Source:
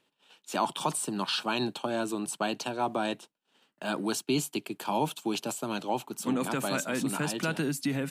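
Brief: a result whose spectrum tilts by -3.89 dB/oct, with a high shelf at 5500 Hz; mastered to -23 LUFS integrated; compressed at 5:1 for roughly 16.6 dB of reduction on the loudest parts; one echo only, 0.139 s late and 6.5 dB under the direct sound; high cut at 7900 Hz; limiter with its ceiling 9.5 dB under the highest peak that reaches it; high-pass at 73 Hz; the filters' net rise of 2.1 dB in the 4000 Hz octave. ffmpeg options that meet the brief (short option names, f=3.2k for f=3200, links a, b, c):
-af "highpass=73,lowpass=7.9k,equalizer=f=4k:t=o:g=6,highshelf=f=5.5k:g=-8.5,acompressor=threshold=-43dB:ratio=5,alimiter=level_in=12.5dB:limit=-24dB:level=0:latency=1,volume=-12.5dB,aecho=1:1:139:0.473,volume=23.5dB"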